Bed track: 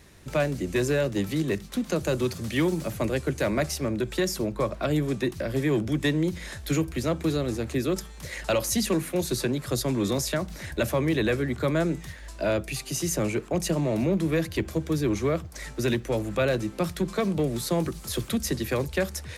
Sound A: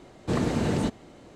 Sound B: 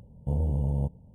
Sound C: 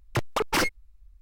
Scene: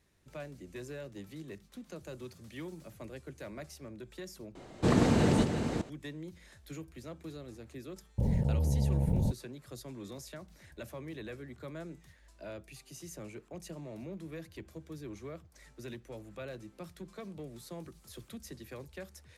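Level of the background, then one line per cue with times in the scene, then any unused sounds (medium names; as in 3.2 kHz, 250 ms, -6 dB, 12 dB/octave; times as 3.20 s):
bed track -19 dB
4.55 s: replace with A + chunks repeated in reverse 422 ms, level -7 dB
8.18 s: add B -3.5 dB + level flattener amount 100%
not used: C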